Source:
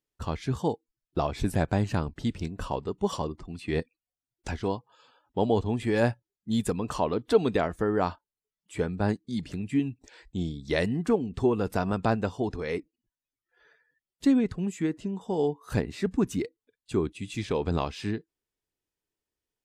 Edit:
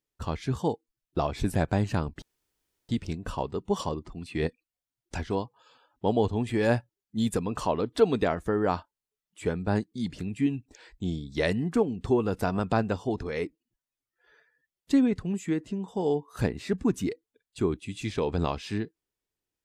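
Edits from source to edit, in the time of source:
2.22 s: insert room tone 0.67 s

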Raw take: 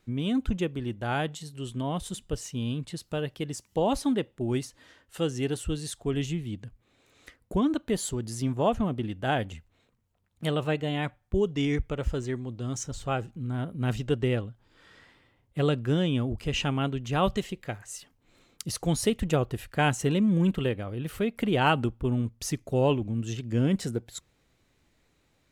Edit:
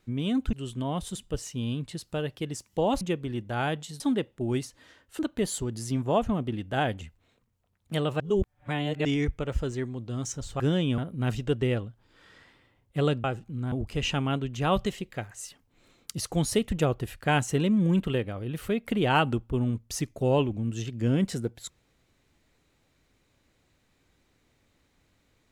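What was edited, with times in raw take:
0.53–1.52 s: move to 4.00 s
5.19–7.70 s: delete
10.71–11.56 s: reverse
13.11–13.59 s: swap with 15.85–16.23 s

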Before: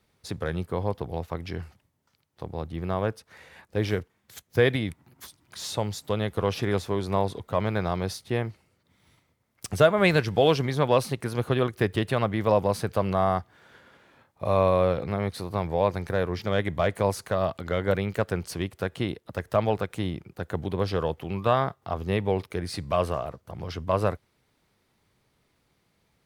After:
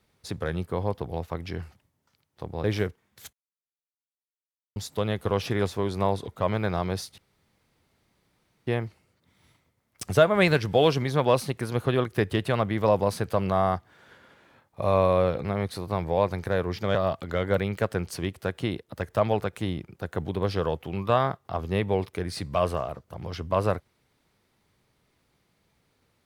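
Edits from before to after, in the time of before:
2.64–3.76 s: delete
4.45–5.88 s: mute
8.30 s: insert room tone 1.49 s
16.58–17.32 s: delete

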